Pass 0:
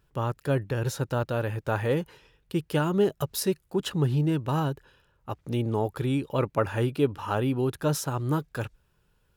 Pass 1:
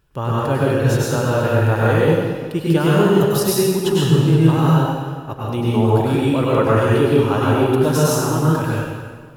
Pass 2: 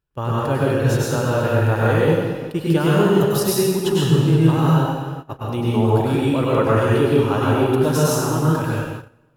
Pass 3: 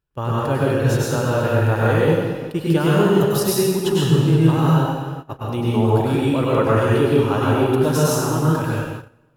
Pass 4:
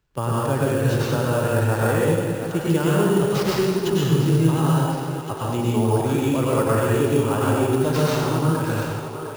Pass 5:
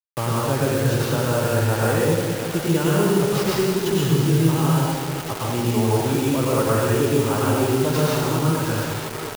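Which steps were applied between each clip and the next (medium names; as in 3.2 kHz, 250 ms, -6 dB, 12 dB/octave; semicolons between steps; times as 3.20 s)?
plate-style reverb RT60 1.6 s, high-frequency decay 0.85×, pre-delay 85 ms, DRR -6.5 dB; trim +4 dB
gate -28 dBFS, range -17 dB; trim -1.5 dB
no audible change
two-band feedback delay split 380 Hz, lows 177 ms, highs 707 ms, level -13 dB; sample-rate reducer 10 kHz, jitter 0%; three bands compressed up and down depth 40%; trim -3 dB
bit crusher 5-bit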